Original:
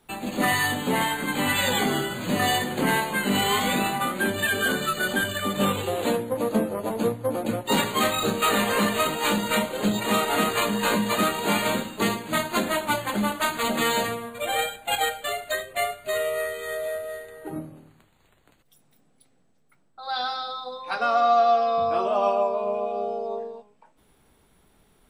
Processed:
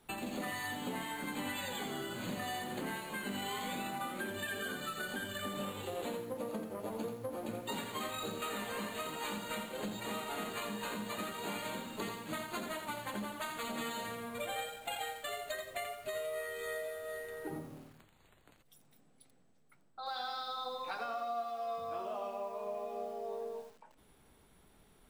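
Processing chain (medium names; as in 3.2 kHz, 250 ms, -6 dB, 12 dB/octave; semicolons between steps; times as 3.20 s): compression 10:1, threshold -34 dBFS, peak gain reduction 18 dB; bit-crushed delay 85 ms, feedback 35%, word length 9-bit, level -6.5 dB; trim -3.5 dB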